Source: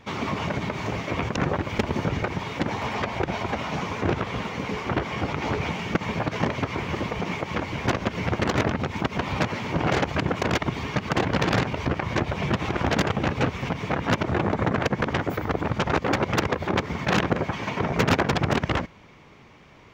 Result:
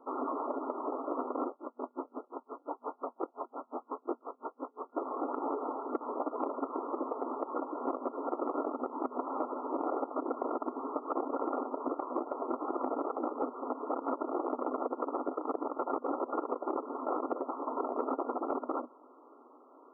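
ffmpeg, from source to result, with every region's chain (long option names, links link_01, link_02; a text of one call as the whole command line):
ffmpeg -i in.wav -filter_complex "[0:a]asettb=1/sr,asplit=3[link_01][link_02][link_03];[link_01]atrim=end=1.484[link_04];[link_02]atrim=start=1.48:end=4.98,asetpts=PTS-STARTPTS,afade=type=in:duration=0.004:curve=qsin,afade=type=out:start_time=3.496:duration=0.004:curve=qsin,aeval=exprs='clip(val(0),-1,0.075)':channel_layout=same,asplit=2[link_05][link_06];[link_06]adelay=23,volume=-11dB[link_07];[link_05][link_07]amix=inputs=2:normalize=0,atrim=end_sample=154350,aeval=exprs='val(0)*pow(10,-39*(0.5-0.5*cos(2*PI*5.7*n/s))/20)':channel_layout=same[link_08];[link_03]atrim=start=4.976[link_09];[link_04][link_08]acrossfade=duration=0.004:curve1=hsin:curve2=qsin[link_10];[link_10][link_09]acrossfade=duration=0.004:curve1=qsin:curve2=hsin,afftfilt=real='re*between(b*sr/4096,240,1400)':imag='im*between(b*sr/4096,240,1400)':win_size=4096:overlap=0.75,acompressor=threshold=-27dB:ratio=5,volume=-3dB" out.wav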